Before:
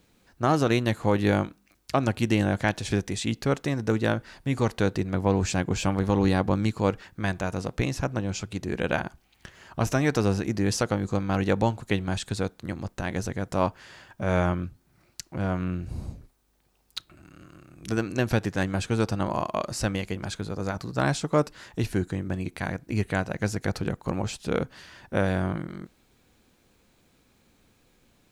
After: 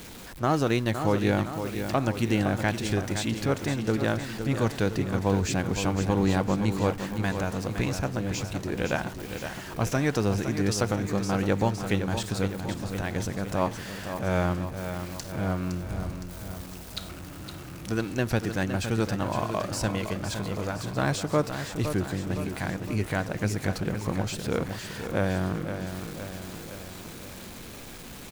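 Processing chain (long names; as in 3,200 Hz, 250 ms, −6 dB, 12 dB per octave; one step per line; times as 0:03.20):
converter with a step at zero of −35.5 dBFS
repeating echo 513 ms, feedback 58%, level −8.5 dB
level −2.5 dB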